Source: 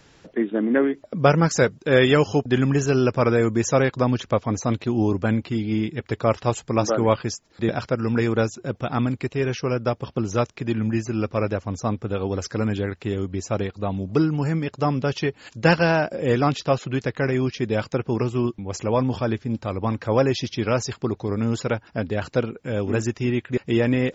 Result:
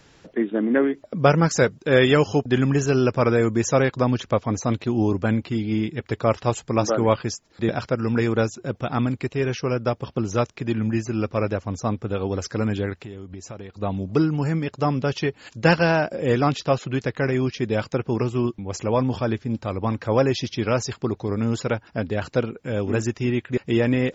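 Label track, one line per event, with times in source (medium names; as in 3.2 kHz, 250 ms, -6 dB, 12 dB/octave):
12.960000	13.810000	compression 4:1, threshold -34 dBFS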